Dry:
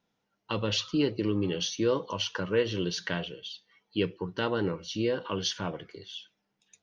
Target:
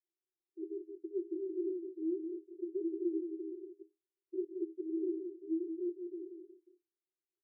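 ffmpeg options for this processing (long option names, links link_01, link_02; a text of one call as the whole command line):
ffmpeg -i in.wav -af "afwtdn=0.0282,aecho=1:1:3:0.96,acompressor=threshold=-30dB:ratio=6,aecho=1:1:162:0.473,asetrate=40517,aresample=44100,asuperpass=centerf=360:order=20:qfactor=4.1,volume=1.5dB" out.wav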